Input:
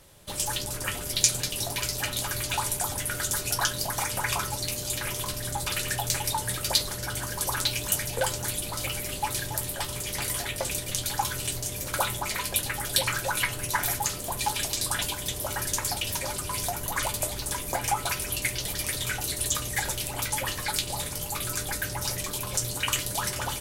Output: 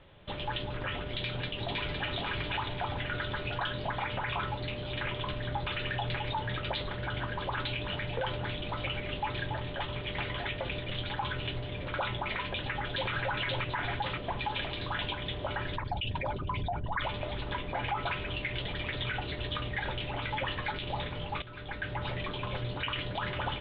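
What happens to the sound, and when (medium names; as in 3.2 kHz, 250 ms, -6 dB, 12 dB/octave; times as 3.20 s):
1.17–2.17 s: echo throw 510 ms, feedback 40%, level -3.5 dB
9.39–11.50 s: band-stop 5.2 kHz
12.43–13.11 s: echo throw 530 ms, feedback 45%, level -2 dB
15.76–17.02 s: resonances exaggerated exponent 2
21.42–22.09 s: fade in, from -14.5 dB
whole clip: steep low-pass 3.6 kHz 72 dB/octave; peak limiter -23.5 dBFS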